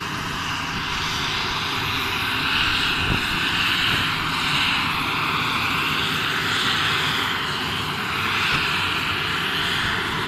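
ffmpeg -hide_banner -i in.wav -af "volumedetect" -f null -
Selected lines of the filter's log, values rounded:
mean_volume: -22.8 dB
max_volume: -6.8 dB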